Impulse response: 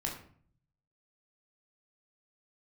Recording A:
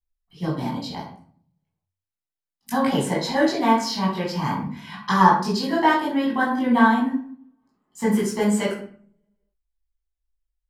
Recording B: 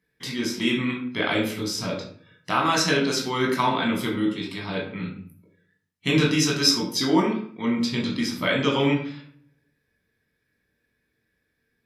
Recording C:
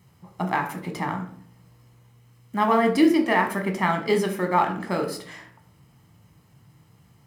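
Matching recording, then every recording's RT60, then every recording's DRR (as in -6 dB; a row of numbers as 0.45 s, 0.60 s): B; 0.50 s, 0.50 s, 0.50 s; -7.5 dB, -1.5 dB, 4.0 dB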